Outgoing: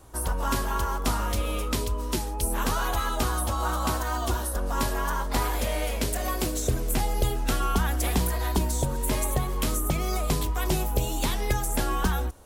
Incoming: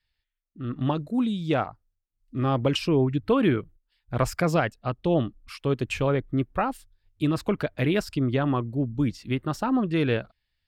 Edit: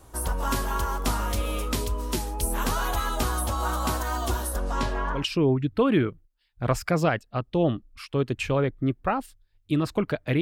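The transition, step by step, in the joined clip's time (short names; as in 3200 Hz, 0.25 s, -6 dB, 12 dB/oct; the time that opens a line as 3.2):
outgoing
4.58–5.26 LPF 11000 Hz -> 1200 Hz
5.19 switch to incoming from 2.7 s, crossfade 0.14 s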